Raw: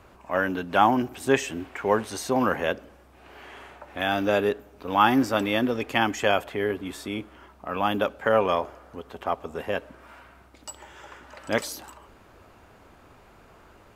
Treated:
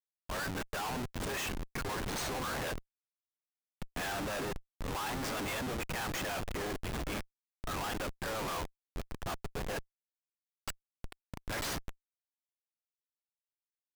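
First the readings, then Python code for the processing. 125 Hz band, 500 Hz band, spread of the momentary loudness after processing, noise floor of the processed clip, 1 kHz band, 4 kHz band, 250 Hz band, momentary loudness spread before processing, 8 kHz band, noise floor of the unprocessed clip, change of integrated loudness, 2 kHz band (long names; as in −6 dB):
−5.0 dB, −15.5 dB, 11 LU, below −85 dBFS, −14.0 dB, −7.0 dB, −14.0 dB, 21 LU, −2.5 dB, −54 dBFS, −12.5 dB, −10.0 dB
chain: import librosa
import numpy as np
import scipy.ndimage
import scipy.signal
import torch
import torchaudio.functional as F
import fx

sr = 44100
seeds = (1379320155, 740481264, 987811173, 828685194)

p1 = fx.fuzz(x, sr, gain_db=38.0, gate_db=-37.0)
p2 = x + (p1 * 10.0 ** (-8.0 / 20.0))
p3 = scipy.signal.sosfilt(scipy.signal.butter(2, 1100.0, 'highpass', fs=sr, output='sos'), p2)
p4 = fx.schmitt(p3, sr, flips_db=-26.5)
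y = p4 * 10.0 ** (-7.5 / 20.0)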